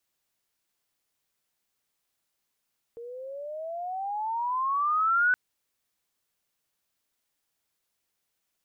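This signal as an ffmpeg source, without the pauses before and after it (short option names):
-f lavfi -i "aevalsrc='pow(10,(-19+19*(t/2.37-1))/20)*sin(2*PI*461*2.37/(20.5*log(2)/12)*(exp(20.5*log(2)/12*t/2.37)-1))':d=2.37:s=44100"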